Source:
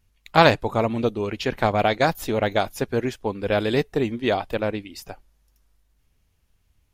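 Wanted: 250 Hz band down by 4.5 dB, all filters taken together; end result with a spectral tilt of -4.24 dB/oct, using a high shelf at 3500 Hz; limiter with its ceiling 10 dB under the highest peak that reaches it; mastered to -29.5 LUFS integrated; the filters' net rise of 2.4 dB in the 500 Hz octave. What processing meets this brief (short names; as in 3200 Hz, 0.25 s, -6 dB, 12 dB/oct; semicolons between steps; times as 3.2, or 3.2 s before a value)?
bell 250 Hz -8 dB; bell 500 Hz +5 dB; high shelf 3500 Hz -3.5 dB; gain -5.5 dB; limiter -16 dBFS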